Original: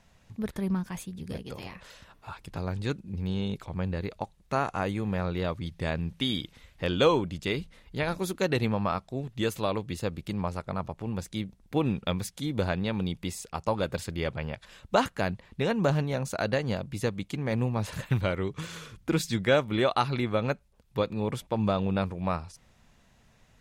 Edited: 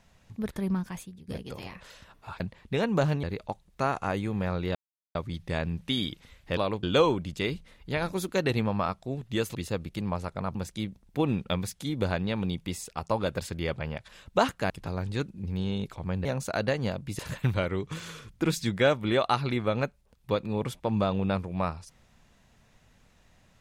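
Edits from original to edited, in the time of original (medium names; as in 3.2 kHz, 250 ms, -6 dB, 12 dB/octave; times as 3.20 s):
0.87–1.28 s: fade out, to -15.5 dB
2.40–3.95 s: swap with 15.27–16.10 s
5.47 s: insert silence 0.40 s
9.61–9.87 s: move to 6.89 s
10.87–11.12 s: delete
17.04–17.86 s: delete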